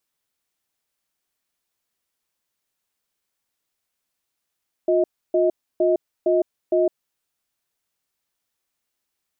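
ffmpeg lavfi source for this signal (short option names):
-f lavfi -i "aevalsrc='0.126*(sin(2*PI*357*t)+sin(2*PI*632*t))*clip(min(mod(t,0.46),0.16-mod(t,0.46))/0.005,0,1)':d=2.22:s=44100"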